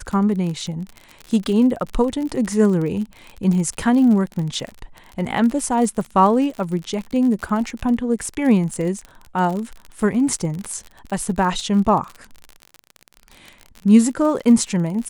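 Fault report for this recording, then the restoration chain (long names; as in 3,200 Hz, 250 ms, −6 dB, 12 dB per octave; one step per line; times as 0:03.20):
surface crackle 44 per second −26 dBFS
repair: click removal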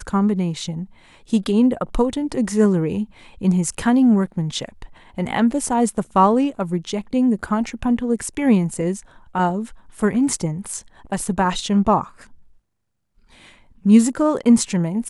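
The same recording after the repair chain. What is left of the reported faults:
none of them is left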